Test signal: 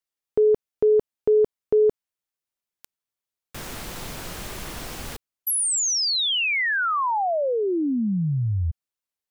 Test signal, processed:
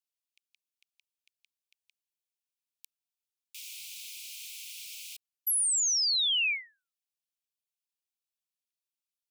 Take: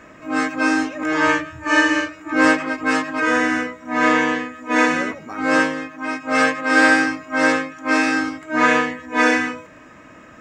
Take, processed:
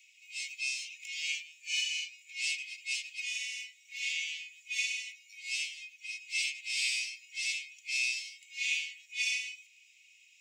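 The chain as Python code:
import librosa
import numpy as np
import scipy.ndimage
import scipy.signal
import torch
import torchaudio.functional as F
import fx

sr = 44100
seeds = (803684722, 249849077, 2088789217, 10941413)

y = scipy.signal.sosfilt(scipy.signal.butter(16, 2300.0, 'highpass', fs=sr, output='sos'), x)
y = F.gain(torch.from_numpy(y), -4.0).numpy()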